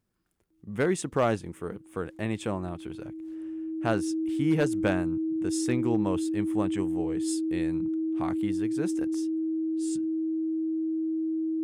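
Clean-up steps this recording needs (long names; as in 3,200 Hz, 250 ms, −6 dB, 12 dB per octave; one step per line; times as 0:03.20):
clipped peaks rebuilt −16.5 dBFS
notch filter 320 Hz, Q 30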